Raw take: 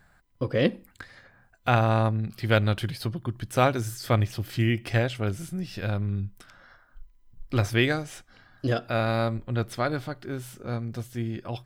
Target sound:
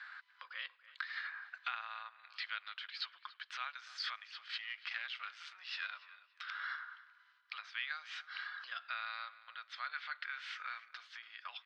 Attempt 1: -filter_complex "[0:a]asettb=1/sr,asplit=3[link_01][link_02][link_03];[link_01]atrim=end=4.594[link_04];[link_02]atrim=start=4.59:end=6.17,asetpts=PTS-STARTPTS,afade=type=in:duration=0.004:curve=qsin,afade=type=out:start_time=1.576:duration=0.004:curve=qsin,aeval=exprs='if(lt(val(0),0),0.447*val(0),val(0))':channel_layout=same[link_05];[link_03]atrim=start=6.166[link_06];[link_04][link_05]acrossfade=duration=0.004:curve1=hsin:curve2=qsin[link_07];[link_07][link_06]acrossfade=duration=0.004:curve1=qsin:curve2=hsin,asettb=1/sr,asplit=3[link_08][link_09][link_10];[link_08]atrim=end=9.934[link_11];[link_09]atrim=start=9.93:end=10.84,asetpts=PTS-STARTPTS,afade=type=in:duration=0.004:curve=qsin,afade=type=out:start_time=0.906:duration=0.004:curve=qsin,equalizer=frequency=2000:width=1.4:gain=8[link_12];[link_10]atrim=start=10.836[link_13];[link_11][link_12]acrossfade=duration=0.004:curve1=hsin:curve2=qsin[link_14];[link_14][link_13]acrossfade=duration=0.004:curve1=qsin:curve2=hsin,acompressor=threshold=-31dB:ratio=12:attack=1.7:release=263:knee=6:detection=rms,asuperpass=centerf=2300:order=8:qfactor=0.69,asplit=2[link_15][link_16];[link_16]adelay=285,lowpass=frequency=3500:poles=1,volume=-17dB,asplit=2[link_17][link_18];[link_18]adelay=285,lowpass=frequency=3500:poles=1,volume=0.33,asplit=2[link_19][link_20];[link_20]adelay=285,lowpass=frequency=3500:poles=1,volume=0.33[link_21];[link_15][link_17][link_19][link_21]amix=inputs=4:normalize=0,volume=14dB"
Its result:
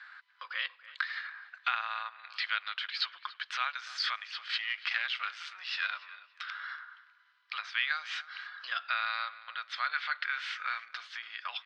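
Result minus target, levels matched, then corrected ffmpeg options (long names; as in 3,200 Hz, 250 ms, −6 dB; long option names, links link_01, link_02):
downward compressor: peak gain reduction −9.5 dB
-filter_complex "[0:a]asettb=1/sr,asplit=3[link_01][link_02][link_03];[link_01]atrim=end=4.594[link_04];[link_02]atrim=start=4.59:end=6.17,asetpts=PTS-STARTPTS,afade=type=in:duration=0.004:curve=qsin,afade=type=out:start_time=1.576:duration=0.004:curve=qsin,aeval=exprs='if(lt(val(0),0),0.447*val(0),val(0))':channel_layout=same[link_05];[link_03]atrim=start=6.166[link_06];[link_04][link_05]acrossfade=duration=0.004:curve1=hsin:curve2=qsin[link_07];[link_07][link_06]acrossfade=duration=0.004:curve1=qsin:curve2=hsin,asettb=1/sr,asplit=3[link_08][link_09][link_10];[link_08]atrim=end=9.934[link_11];[link_09]atrim=start=9.93:end=10.84,asetpts=PTS-STARTPTS,afade=type=in:duration=0.004:curve=qsin,afade=type=out:start_time=0.906:duration=0.004:curve=qsin,equalizer=frequency=2000:width=1.4:gain=8[link_12];[link_10]atrim=start=10.836[link_13];[link_11][link_12]acrossfade=duration=0.004:curve1=hsin:curve2=qsin[link_14];[link_14][link_13]acrossfade=duration=0.004:curve1=qsin:curve2=hsin,acompressor=threshold=-41.5dB:ratio=12:attack=1.7:release=263:knee=6:detection=rms,asuperpass=centerf=2300:order=8:qfactor=0.69,asplit=2[link_15][link_16];[link_16]adelay=285,lowpass=frequency=3500:poles=1,volume=-17dB,asplit=2[link_17][link_18];[link_18]adelay=285,lowpass=frequency=3500:poles=1,volume=0.33,asplit=2[link_19][link_20];[link_20]adelay=285,lowpass=frequency=3500:poles=1,volume=0.33[link_21];[link_15][link_17][link_19][link_21]amix=inputs=4:normalize=0,volume=14dB"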